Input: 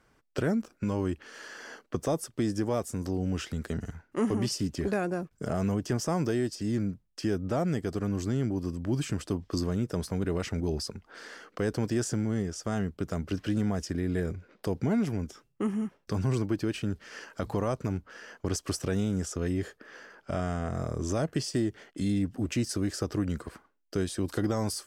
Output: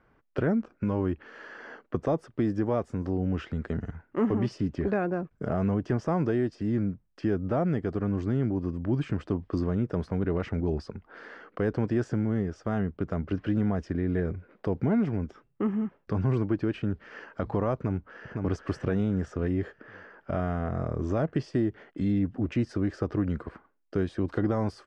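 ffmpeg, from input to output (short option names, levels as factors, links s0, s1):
-filter_complex "[0:a]asplit=2[s0][s1];[s1]afade=t=in:st=17.74:d=0.01,afade=t=out:st=18.34:d=0.01,aecho=0:1:510|1020|1530|2040|2550:0.630957|0.252383|0.100953|0.0403813|0.0161525[s2];[s0][s2]amix=inputs=2:normalize=0,lowpass=2000,volume=1.26"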